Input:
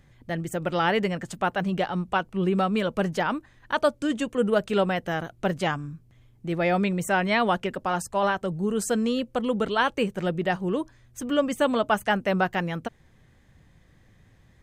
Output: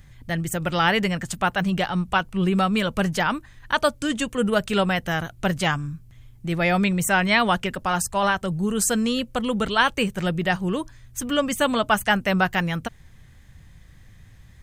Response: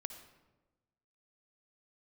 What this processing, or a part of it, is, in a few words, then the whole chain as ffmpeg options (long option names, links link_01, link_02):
smiley-face EQ: -af "lowshelf=frequency=120:gain=5.5,equalizer=frequency=410:width_type=o:width=2.4:gain=-8.5,highshelf=frequency=8300:gain=6,volume=7dB"